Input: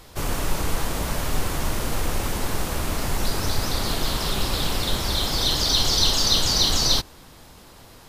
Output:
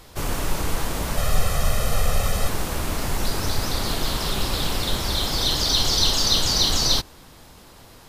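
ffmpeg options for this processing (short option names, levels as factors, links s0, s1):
-filter_complex "[0:a]asettb=1/sr,asplit=3[s0][s1][s2];[s0]atrim=end=1.174[s3];[s1]atrim=start=1.17:end=2.49,asetpts=PTS-STARTPTS,afade=t=in:d=0.004:c=qsin,afade=t=out:st=1.316:d=0.004:c=qsin,aecho=1:1:1.6:0.83,atrim=end_sample=58212[s4];[s2]atrim=start=2.486[s5];[s3][s4]acrossfade=d=0.004:c1=hsin:c2=qsin[s6];[s6][s5]acrossfade=d=0.004:c1=qsin:c2=hsin"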